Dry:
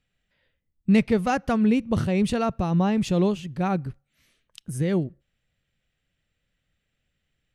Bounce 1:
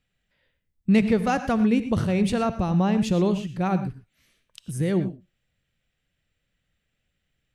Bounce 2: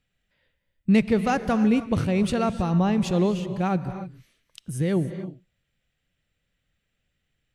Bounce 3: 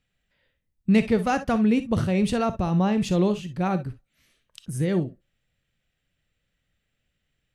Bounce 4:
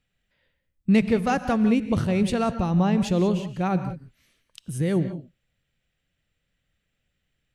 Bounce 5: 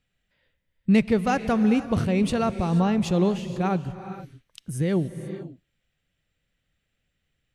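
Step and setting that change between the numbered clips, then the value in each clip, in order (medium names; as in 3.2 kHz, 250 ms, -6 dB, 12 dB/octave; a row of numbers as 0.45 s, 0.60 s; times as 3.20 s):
gated-style reverb, gate: 140 ms, 330 ms, 80 ms, 210 ms, 510 ms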